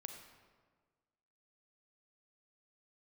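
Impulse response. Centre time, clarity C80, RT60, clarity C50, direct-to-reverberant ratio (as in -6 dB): 35 ms, 7.0 dB, 1.5 s, 5.5 dB, 4.5 dB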